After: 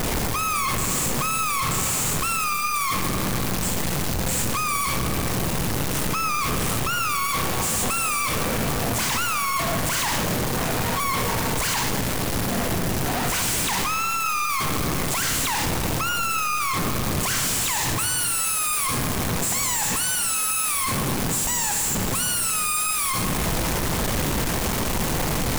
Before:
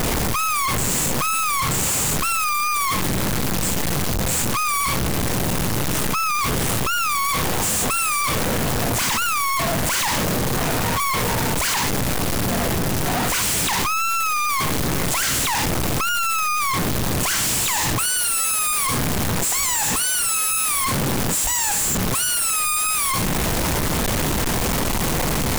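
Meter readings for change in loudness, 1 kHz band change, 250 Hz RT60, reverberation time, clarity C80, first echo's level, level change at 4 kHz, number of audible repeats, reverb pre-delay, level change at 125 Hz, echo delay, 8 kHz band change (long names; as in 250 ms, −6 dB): −3.0 dB, −2.5 dB, 2.8 s, 2.8 s, 7.5 dB, no echo audible, −3.0 dB, no echo audible, 38 ms, −2.5 dB, no echo audible, −3.0 dB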